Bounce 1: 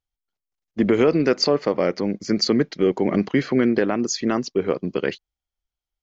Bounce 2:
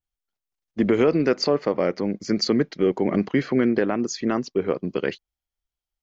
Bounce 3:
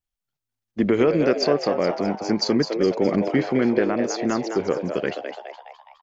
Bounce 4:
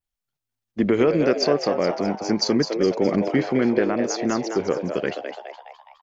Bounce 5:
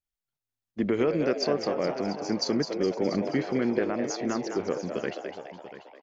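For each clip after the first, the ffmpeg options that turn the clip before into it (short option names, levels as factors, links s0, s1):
-af "adynamicequalizer=threshold=0.01:dfrequency=2900:dqfactor=0.7:tfrequency=2900:tqfactor=0.7:attack=5:release=100:ratio=0.375:range=2.5:mode=cutabove:tftype=highshelf,volume=0.841"
-filter_complex "[0:a]asplit=7[s0][s1][s2][s3][s4][s5][s6];[s1]adelay=208,afreqshift=110,volume=0.422[s7];[s2]adelay=416,afreqshift=220,volume=0.211[s8];[s3]adelay=624,afreqshift=330,volume=0.106[s9];[s4]adelay=832,afreqshift=440,volume=0.0525[s10];[s5]adelay=1040,afreqshift=550,volume=0.0263[s11];[s6]adelay=1248,afreqshift=660,volume=0.0132[s12];[s0][s7][s8][s9][s10][s11][s12]amix=inputs=7:normalize=0"
-af "adynamicequalizer=threshold=0.00398:dfrequency=5800:dqfactor=4.2:tfrequency=5800:tqfactor=4.2:attack=5:release=100:ratio=0.375:range=2.5:mode=boostabove:tftype=bell"
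-af "aecho=1:1:688:0.211,volume=0.473"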